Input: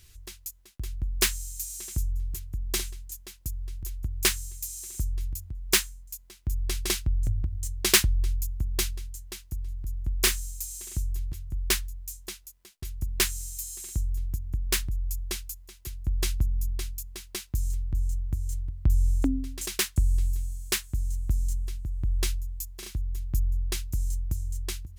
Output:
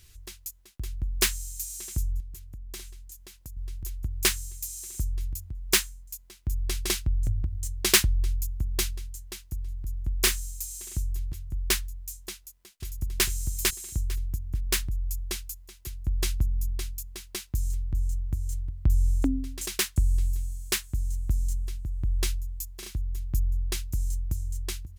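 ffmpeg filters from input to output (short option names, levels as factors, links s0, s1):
-filter_complex "[0:a]asettb=1/sr,asplit=3[s0][s1][s2];[s0]atrim=end=2.204[s3];[s1]atrim=start=2.2:end=3.57,asetpts=PTS-STARTPTS,afade=t=in:d=0.004:c=qsin,afade=t=out:st=1.366:d=0.004:c=qsin,acompressor=threshold=0.00562:ratio=2:attack=3.2:release=140:knee=1:detection=peak[s4];[s2]atrim=start=3.566[s5];[s3][s4]acrossfade=d=0.004:c1=hsin:c2=qsin[s6];[s6][s5]acrossfade=d=0.004:c1=qsin:c2=hsin,asplit=2[s7][s8];[s8]afade=t=in:st=12.35:d=0.01,afade=t=out:st=13.25:d=0.01,aecho=0:1:450|900|1350:0.891251|0.133688|0.0200531[s9];[s7][s9]amix=inputs=2:normalize=0"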